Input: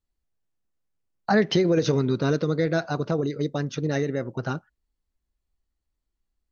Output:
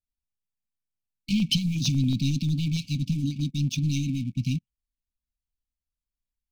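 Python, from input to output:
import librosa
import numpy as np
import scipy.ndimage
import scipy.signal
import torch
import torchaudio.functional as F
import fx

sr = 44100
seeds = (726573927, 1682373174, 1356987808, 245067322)

y = fx.leveller(x, sr, passes=3)
y = fx.brickwall_bandstop(y, sr, low_hz=290.0, high_hz=2200.0)
y = fx.filter_held_notch(y, sr, hz=11.0, low_hz=530.0, high_hz=2100.0, at=(1.31, 3.79))
y = F.gain(torch.from_numpy(y), -5.0).numpy()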